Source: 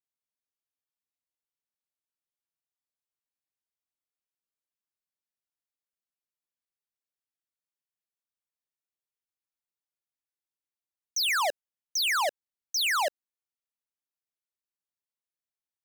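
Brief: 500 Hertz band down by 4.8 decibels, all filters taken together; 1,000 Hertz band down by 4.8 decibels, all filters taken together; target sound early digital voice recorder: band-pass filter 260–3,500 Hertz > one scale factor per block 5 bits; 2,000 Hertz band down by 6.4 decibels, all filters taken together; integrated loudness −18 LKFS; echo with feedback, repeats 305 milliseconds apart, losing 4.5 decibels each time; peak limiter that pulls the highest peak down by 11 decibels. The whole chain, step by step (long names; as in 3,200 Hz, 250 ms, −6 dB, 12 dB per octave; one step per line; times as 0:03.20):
parametric band 500 Hz −4.5 dB
parametric band 1,000 Hz −3 dB
parametric band 2,000 Hz −6.5 dB
brickwall limiter −35 dBFS
band-pass filter 260–3,500 Hz
repeating echo 305 ms, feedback 60%, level −4.5 dB
one scale factor per block 5 bits
level +25 dB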